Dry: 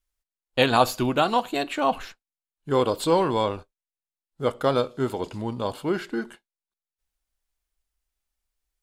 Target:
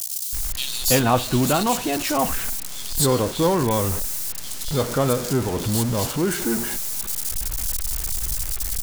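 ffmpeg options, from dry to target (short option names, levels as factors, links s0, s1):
-filter_complex "[0:a]aeval=exprs='val(0)+0.5*0.0596*sgn(val(0))':c=same,bass=f=250:g=8,treble=f=4000:g=11,acrossover=split=3100[s0][s1];[s0]adelay=330[s2];[s2][s1]amix=inputs=2:normalize=0,volume=0.794"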